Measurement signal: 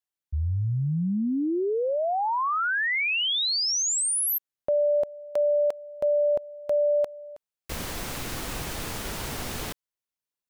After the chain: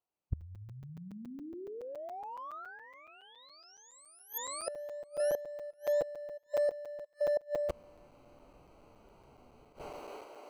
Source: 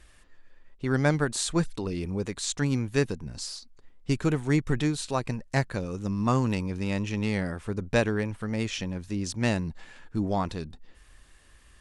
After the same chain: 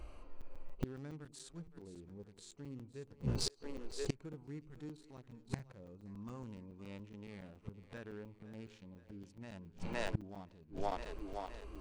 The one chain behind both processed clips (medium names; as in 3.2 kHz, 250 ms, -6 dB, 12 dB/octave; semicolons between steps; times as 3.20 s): local Wiener filter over 25 samples; bass shelf 320 Hz -10 dB; harmonic-percussive split percussive -17 dB; peak limiter -26 dBFS; two-band feedback delay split 350 Hz, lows 89 ms, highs 516 ms, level -15 dB; inverted gate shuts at -39 dBFS, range -30 dB; crackling interface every 0.14 s, samples 256, zero, from 0.41 s; trim +17 dB